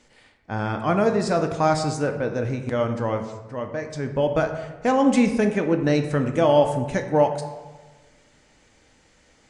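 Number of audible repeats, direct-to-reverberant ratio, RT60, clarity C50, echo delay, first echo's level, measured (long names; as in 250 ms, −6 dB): no echo audible, 5.0 dB, 1.3 s, 8.5 dB, no echo audible, no echo audible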